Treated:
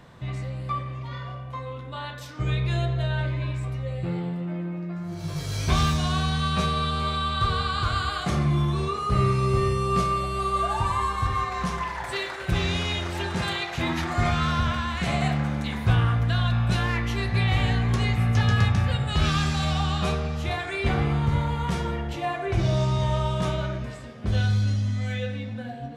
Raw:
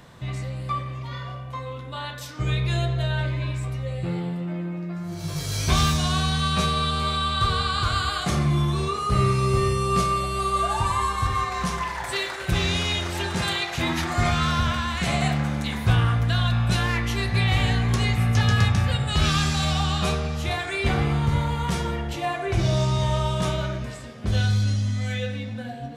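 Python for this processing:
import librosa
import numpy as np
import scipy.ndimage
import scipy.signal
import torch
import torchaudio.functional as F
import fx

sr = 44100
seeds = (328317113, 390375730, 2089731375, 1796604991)

y = fx.high_shelf(x, sr, hz=4400.0, db=-8.0)
y = y * librosa.db_to_amplitude(-1.0)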